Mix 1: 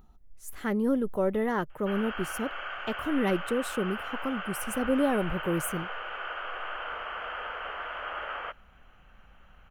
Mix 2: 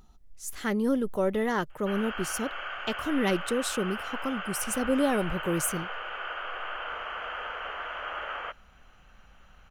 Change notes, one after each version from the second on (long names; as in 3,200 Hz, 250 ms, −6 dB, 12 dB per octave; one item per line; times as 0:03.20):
speech: add parametric band 5,500 Hz +11.5 dB 1.8 octaves
background: add high-shelf EQ 5,000 Hz +7 dB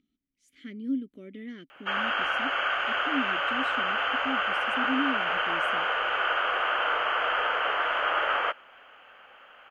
speech: add formant filter i
background +9.5 dB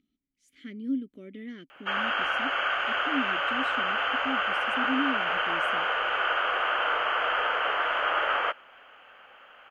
nothing changed